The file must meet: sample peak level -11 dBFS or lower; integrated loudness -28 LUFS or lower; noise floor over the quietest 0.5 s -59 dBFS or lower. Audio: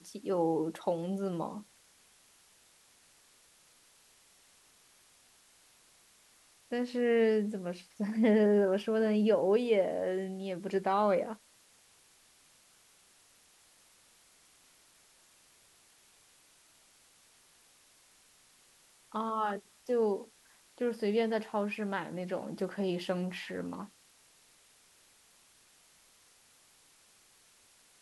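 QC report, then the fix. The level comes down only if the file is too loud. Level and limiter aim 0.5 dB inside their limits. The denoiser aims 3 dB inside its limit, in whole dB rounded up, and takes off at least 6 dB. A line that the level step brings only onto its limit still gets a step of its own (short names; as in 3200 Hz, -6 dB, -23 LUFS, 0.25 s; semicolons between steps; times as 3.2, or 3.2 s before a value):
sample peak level -16.5 dBFS: OK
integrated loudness -32.0 LUFS: OK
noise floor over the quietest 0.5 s -64 dBFS: OK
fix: none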